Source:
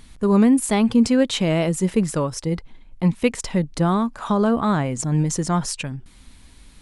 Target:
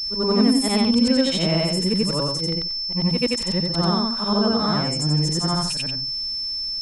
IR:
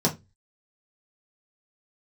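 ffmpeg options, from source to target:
-af "afftfilt=real='re':imag='-im':win_size=8192:overlap=0.75,aeval=exprs='val(0)+0.0447*sin(2*PI*5300*n/s)':c=same,volume=1.33"

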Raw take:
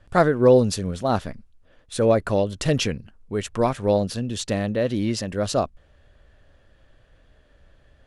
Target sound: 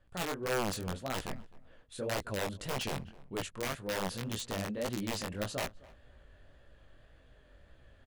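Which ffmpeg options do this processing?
-filter_complex "[0:a]equalizer=f=5600:t=o:w=0.27:g=-6,areverse,acompressor=threshold=0.0316:ratio=6,areverse,aeval=exprs='(mod(16.8*val(0)+1,2)-1)/16.8':c=same,flanger=delay=15.5:depth=7.9:speed=1.8,asplit=2[s0][s1];[s1]adelay=259,lowpass=f=2000:p=1,volume=0.0891,asplit=2[s2][s3];[s3]adelay=259,lowpass=f=2000:p=1,volume=0.2[s4];[s0][s2][s4]amix=inputs=3:normalize=0"

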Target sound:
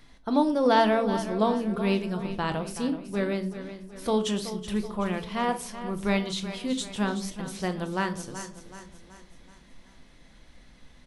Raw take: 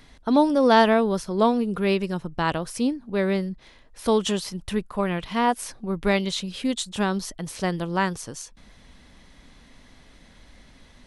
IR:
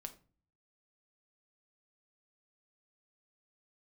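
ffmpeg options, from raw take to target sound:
-filter_complex "[0:a]aecho=1:1:377|754|1131|1508|1885:0.251|0.121|0.0579|0.0278|0.0133[s0];[1:a]atrim=start_sample=2205[s1];[s0][s1]afir=irnorm=-1:irlink=0"

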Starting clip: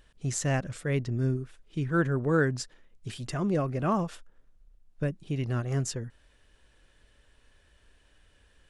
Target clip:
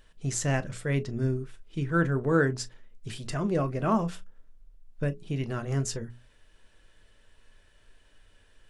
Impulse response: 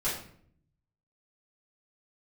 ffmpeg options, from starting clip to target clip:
-filter_complex "[0:a]bandreject=f=60:t=h:w=6,bandreject=f=120:t=h:w=6,bandreject=f=180:t=h:w=6,bandreject=f=240:t=h:w=6,bandreject=f=300:t=h:w=6,bandreject=f=360:t=h:w=6,bandreject=f=420:t=h:w=6,asplit=2[s0][s1];[1:a]atrim=start_sample=2205,atrim=end_sample=3087,asetrate=66150,aresample=44100[s2];[s1][s2]afir=irnorm=-1:irlink=0,volume=0.251[s3];[s0][s3]amix=inputs=2:normalize=0"

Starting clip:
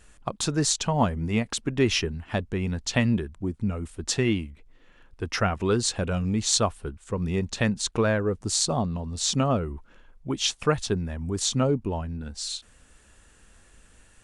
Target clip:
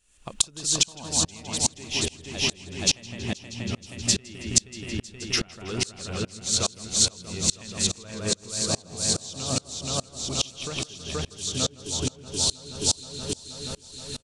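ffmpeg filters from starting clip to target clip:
-filter_complex "[0:a]highshelf=f=7500:g=-6,asplit=2[s0][s1];[s1]aecho=0:1:477|954|1431|1908|2385|2862|3339|3816:0.668|0.368|0.202|0.111|0.0612|0.0336|0.0185|0.0102[s2];[s0][s2]amix=inputs=2:normalize=0,acompressor=threshold=0.0251:ratio=6,asplit=2[s3][s4];[s4]adelay=162,lowpass=f=4100:p=1,volume=0.708,asplit=2[s5][s6];[s6]adelay=162,lowpass=f=4100:p=1,volume=0.49,asplit=2[s7][s8];[s8]adelay=162,lowpass=f=4100:p=1,volume=0.49,asplit=2[s9][s10];[s10]adelay=162,lowpass=f=4100:p=1,volume=0.49,asplit=2[s11][s12];[s12]adelay=162,lowpass=f=4100:p=1,volume=0.49,asplit=2[s13][s14];[s14]adelay=162,lowpass=f=4100:p=1,volume=0.49[s15];[s5][s7][s9][s11][s13][s15]amix=inputs=6:normalize=0[s16];[s3][s16]amix=inputs=2:normalize=0,aexciter=amount=4.2:drive=4:freq=2400,aeval=exprs='val(0)*pow(10,-29*if(lt(mod(-2.4*n/s,1),2*abs(-2.4)/1000),1-mod(-2.4*n/s,1)/(2*abs(-2.4)/1000),(mod(-2.4*n/s,1)-2*abs(-2.4)/1000)/(1-2*abs(-2.4)/1000))/20)':c=same,volume=2.37"

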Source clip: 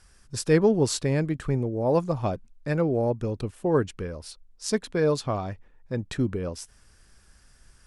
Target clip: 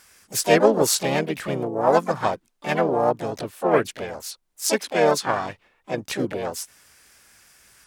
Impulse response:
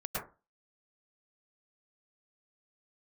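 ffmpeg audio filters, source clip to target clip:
-filter_complex "[0:a]highpass=f=600:p=1,asplit=4[s0][s1][s2][s3];[s1]asetrate=55563,aresample=44100,atempo=0.793701,volume=0.631[s4];[s2]asetrate=66075,aresample=44100,atempo=0.66742,volume=0.562[s5];[s3]asetrate=88200,aresample=44100,atempo=0.5,volume=0.158[s6];[s0][s4][s5][s6]amix=inputs=4:normalize=0,aeval=exprs='0.355*(cos(1*acos(clip(val(0)/0.355,-1,1)))-cos(1*PI/2))+0.00562*(cos(7*acos(clip(val(0)/0.355,-1,1)))-cos(7*PI/2))':c=same,volume=2.24"

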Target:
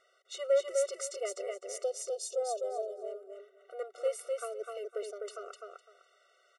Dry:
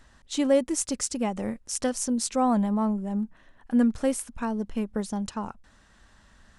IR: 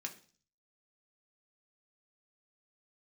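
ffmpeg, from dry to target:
-filter_complex "[0:a]asplit=3[s0][s1][s2];[s0]afade=t=out:st=1.82:d=0.02[s3];[s1]asuperstop=centerf=1600:order=8:qfactor=0.65,afade=t=in:st=1.82:d=0.02,afade=t=out:st=2.98:d=0.02[s4];[s2]afade=t=in:st=2.98:d=0.02[s5];[s3][s4][s5]amix=inputs=3:normalize=0,highshelf=f=7000:g=-10,asoftclip=type=tanh:threshold=0.188,aecho=1:1:253|506|759:0.668|0.127|0.0241,afftfilt=real='re*eq(mod(floor(b*sr/1024/380),2),1)':imag='im*eq(mod(floor(b*sr/1024/380),2),1)':win_size=1024:overlap=0.75,volume=0.75"

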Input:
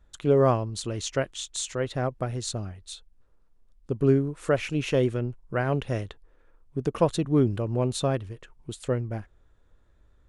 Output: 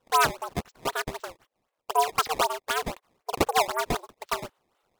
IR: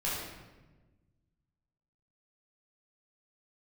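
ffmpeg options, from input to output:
-af "highpass=f=160:t=q:w=0.5412,highpass=f=160:t=q:w=1.307,lowpass=f=2500:t=q:w=0.5176,lowpass=f=2500:t=q:w=0.7071,lowpass=f=2500:t=q:w=1.932,afreqshift=72,acrusher=samples=36:mix=1:aa=0.000001:lfo=1:lforange=57.6:lforate=1.9,asetrate=90846,aresample=44100"

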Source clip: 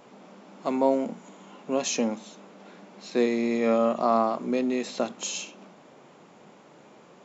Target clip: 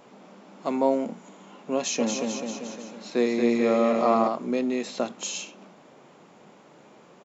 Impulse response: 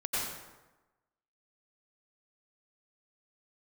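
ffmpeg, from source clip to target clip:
-filter_complex "[0:a]asplit=3[s0][s1][s2];[s0]afade=t=out:st=1.99:d=0.02[s3];[s1]aecho=1:1:230|437|623.3|791|941.9:0.631|0.398|0.251|0.158|0.1,afade=t=in:st=1.99:d=0.02,afade=t=out:st=4.27:d=0.02[s4];[s2]afade=t=in:st=4.27:d=0.02[s5];[s3][s4][s5]amix=inputs=3:normalize=0"

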